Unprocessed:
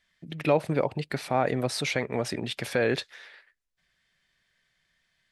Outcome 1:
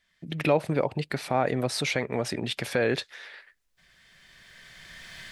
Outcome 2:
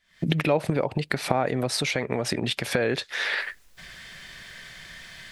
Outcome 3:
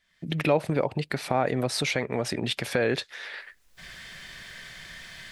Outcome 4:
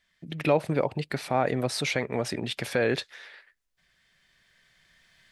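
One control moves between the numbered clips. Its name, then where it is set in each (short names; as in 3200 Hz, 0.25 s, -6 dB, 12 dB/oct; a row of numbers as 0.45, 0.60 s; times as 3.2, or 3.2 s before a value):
recorder AGC, rising by: 13, 86, 32, 5.1 dB/s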